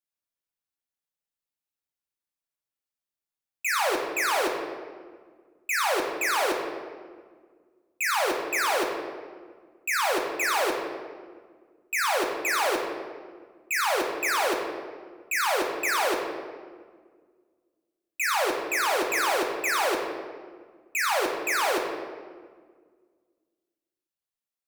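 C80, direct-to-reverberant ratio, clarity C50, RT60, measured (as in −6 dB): 5.0 dB, 0.0 dB, 3.5 dB, 1.7 s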